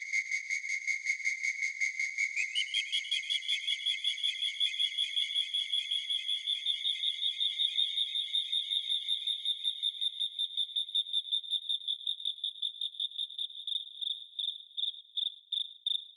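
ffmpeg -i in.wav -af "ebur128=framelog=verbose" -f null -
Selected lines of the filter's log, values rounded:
Integrated loudness:
  I:         -31.3 LUFS
  Threshold: -41.3 LUFS
Loudness range:
  LRA:         4.5 LU
  Threshold: -51.0 LUFS
  LRA low:   -34.4 LUFS
  LRA high:  -29.9 LUFS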